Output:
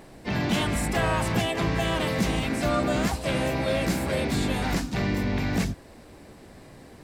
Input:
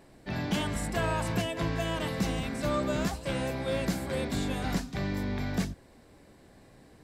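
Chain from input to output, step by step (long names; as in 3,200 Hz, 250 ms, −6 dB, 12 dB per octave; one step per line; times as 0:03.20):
dynamic equaliser 2,200 Hz, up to +3 dB, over −49 dBFS, Q 2.9
in parallel at +2.5 dB: brickwall limiter −29 dBFS, peak gain reduction 11 dB
on the sum: pitch-shifted copies added +3 semitones −6 dB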